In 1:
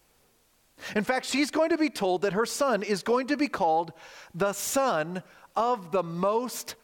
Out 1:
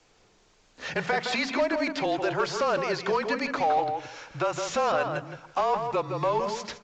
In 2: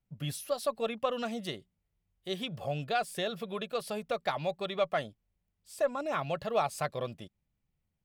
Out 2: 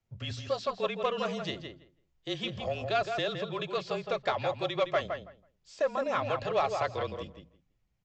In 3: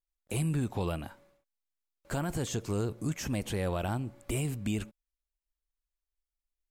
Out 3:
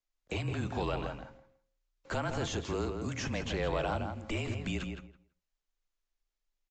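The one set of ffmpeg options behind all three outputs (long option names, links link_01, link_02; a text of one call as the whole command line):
ffmpeg -i in.wav -filter_complex "[0:a]acrossover=split=5200[link_01][link_02];[link_02]acompressor=threshold=-51dB:ratio=4:attack=1:release=60[link_03];[link_01][link_03]amix=inputs=2:normalize=0,bandreject=frequency=50:width_type=h:width=6,bandreject=frequency=100:width_type=h:width=6,bandreject=frequency=150:width_type=h:width=6,bandreject=frequency=200:width_type=h:width=6,bandreject=frequency=250:width_type=h:width=6,bandreject=frequency=300:width_type=h:width=6,acrossover=split=500|3000[link_04][link_05][link_06];[link_04]acompressor=threshold=-44dB:ratio=2[link_07];[link_07][link_05][link_06]amix=inputs=3:normalize=0,asplit=2[link_08][link_09];[link_09]asoftclip=type=tanh:threshold=-31.5dB,volume=-5dB[link_10];[link_08][link_10]amix=inputs=2:normalize=0,afreqshift=-30,asoftclip=type=hard:threshold=-18.5dB,asplit=2[link_11][link_12];[link_12]adelay=164,lowpass=frequency=2600:poles=1,volume=-5.5dB,asplit=2[link_13][link_14];[link_14]adelay=164,lowpass=frequency=2600:poles=1,volume=0.16,asplit=2[link_15][link_16];[link_16]adelay=164,lowpass=frequency=2600:poles=1,volume=0.16[link_17];[link_11][link_13][link_15][link_17]amix=inputs=4:normalize=0" -ar 16000 -c:a aac -b:a 64k out.aac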